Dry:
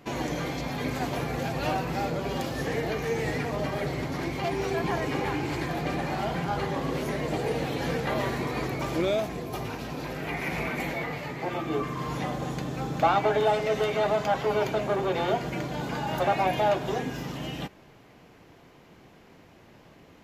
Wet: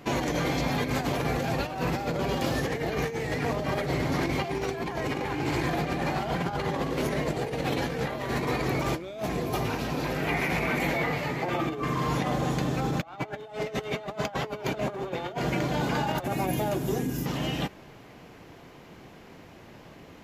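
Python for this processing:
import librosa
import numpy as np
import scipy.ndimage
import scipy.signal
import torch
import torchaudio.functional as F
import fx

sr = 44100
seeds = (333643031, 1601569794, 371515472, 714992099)

y = fx.curve_eq(x, sr, hz=(320.0, 640.0, 3800.0, 11000.0), db=(0, -11, -9, 9), at=(16.24, 17.26))
y = fx.over_compress(y, sr, threshold_db=-31.0, ratio=-0.5)
y = y * librosa.db_to_amplitude(2.5)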